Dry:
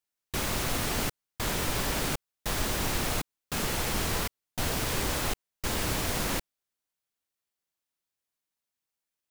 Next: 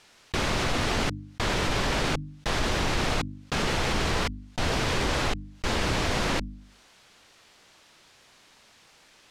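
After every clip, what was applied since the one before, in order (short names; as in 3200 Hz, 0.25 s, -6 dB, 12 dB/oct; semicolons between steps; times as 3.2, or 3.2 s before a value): LPF 5000 Hz 12 dB/oct; notches 50/100/150/200/250/300 Hz; fast leveller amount 50%; gain +3 dB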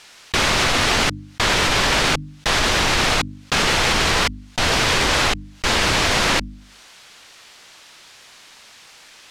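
tilt shelf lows -4.5 dB, about 760 Hz; gain +8 dB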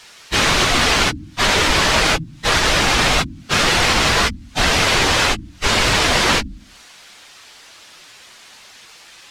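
phase scrambler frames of 50 ms; gain +2.5 dB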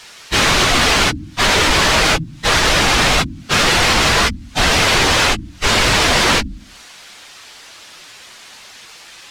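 soft clip -10.5 dBFS, distortion -16 dB; gain +4 dB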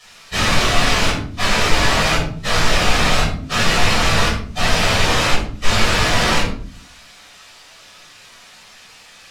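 reverb RT60 0.50 s, pre-delay 7 ms, DRR -5.5 dB; gain -12 dB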